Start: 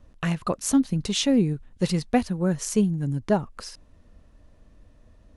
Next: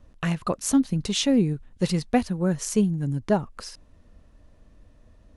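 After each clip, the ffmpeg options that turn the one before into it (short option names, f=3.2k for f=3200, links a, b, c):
-af anull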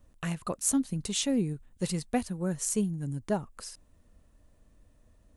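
-af "highshelf=f=8.6k:g=8,aexciter=amount=2.1:drive=4.9:freq=7.2k,volume=-7.5dB"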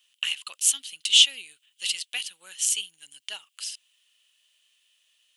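-af "highpass=f=3k:t=q:w=8.4,volume=6.5dB"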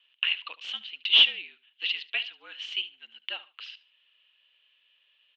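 -af "asoftclip=type=tanh:threshold=-10.5dB,aecho=1:1:73|146:0.126|0.0302,highpass=f=290:t=q:w=0.5412,highpass=f=290:t=q:w=1.307,lowpass=f=3.5k:t=q:w=0.5176,lowpass=f=3.5k:t=q:w=0.7071,lowpass=f=3.5k:t=q:w=1.932,afreqshift=-55,volume=2.5dB"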